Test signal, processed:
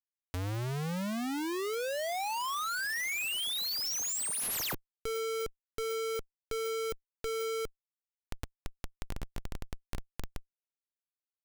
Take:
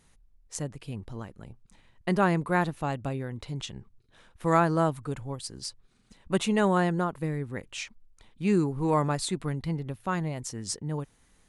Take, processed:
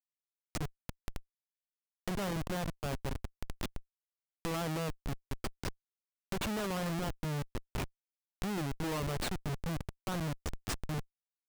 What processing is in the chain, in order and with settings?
Schmitt trigger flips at -29.5 dBFS; tape noise reduction on one side only encoder only; trim -4.5 dB

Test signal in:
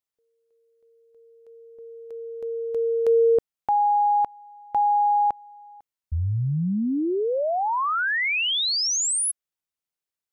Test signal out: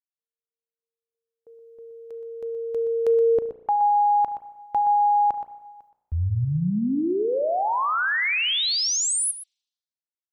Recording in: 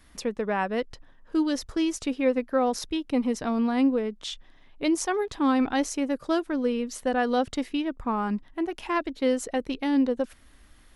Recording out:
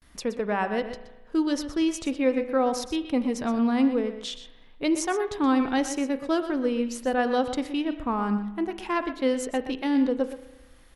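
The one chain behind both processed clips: gate with hold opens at -48 dBFS, hold 71 ms, range -35 dB; echo from a far wall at 21 m, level -11 dB; spring tank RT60 1.1 s, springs 34 ms, chirp 45 ms, DRR 12.5 dB

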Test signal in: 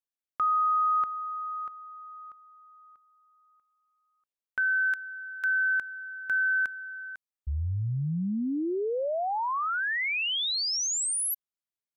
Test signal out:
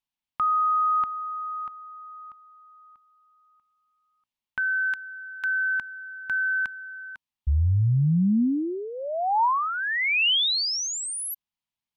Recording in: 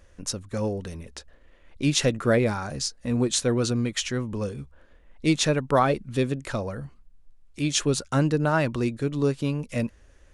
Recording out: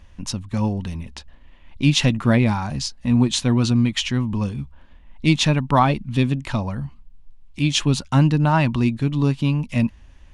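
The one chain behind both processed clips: FFT filter 240 Hz 0 dB, 470 Hz -15 dB, 930 Hz +1 dB, 1.4 kHz -9 dB, 2.9 kHz 0 dB, 7.6 kHz -11 dB; trim +8.5 dB

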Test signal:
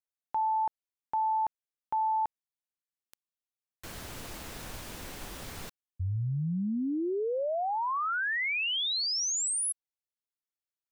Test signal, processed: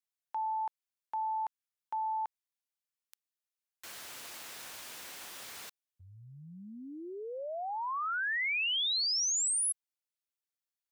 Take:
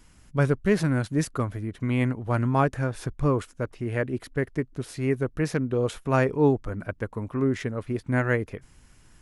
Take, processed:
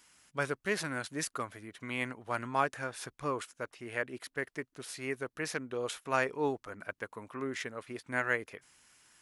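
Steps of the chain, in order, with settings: high-pass 1.4 kHz 6 dB/octave

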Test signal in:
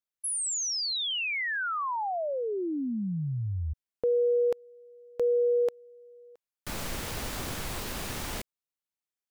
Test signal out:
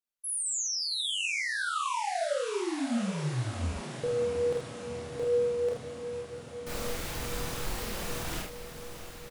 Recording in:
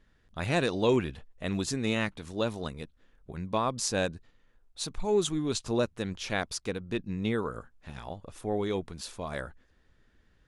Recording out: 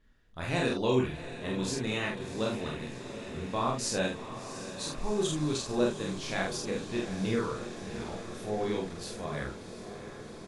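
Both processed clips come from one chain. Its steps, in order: chorus voices 6, 0.25 Hz, delay 29 ms, depth 4.5 ms; doubling 47 ms -3 dB; echo that smears into a reverb 713 ms, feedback 76%, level -11.5 dB

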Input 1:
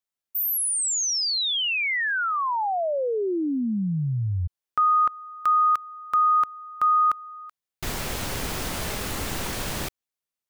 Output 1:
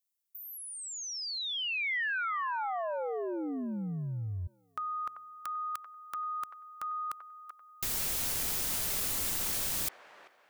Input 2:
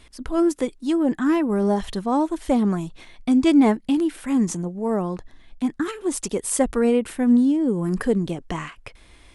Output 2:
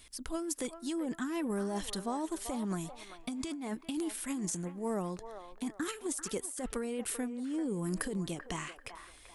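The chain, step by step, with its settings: pre-emphasis filter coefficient 0.8; compressor with a negative ratio -35 dBFS, ratio -1; feedback echo behind a band-pass 389 ms, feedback 33%, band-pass 980 Hz, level -8 dB

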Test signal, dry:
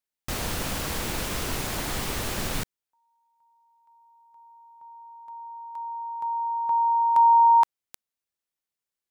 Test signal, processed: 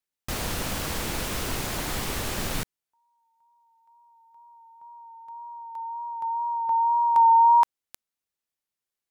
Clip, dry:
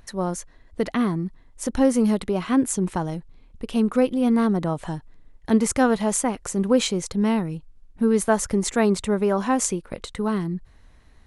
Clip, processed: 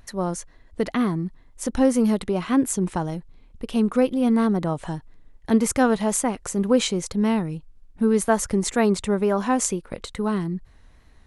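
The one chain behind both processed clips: wow and flutter 29 cents

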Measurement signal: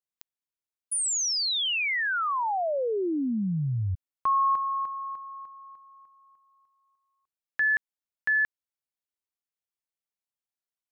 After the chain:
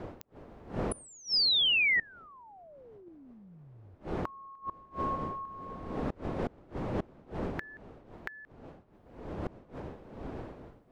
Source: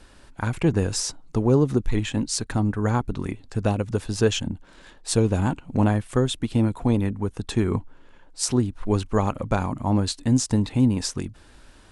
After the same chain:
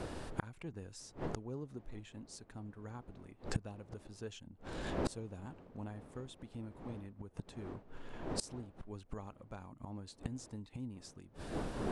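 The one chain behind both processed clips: wind noise 470 Hz -35 dBFS; inverted gate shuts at -23 dBFS, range -27 dB; trim +1.5 dB

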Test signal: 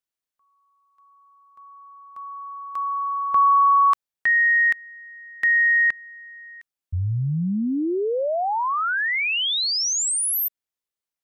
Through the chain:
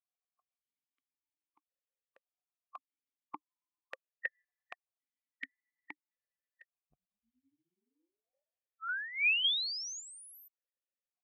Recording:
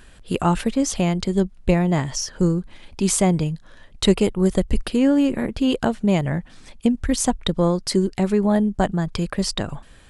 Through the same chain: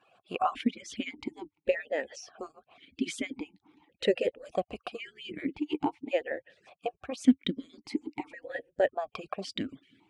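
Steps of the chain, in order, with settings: harmonic-percussive separation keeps percussive; stepped vowel filter 1.8 Hz; trim +6 dB

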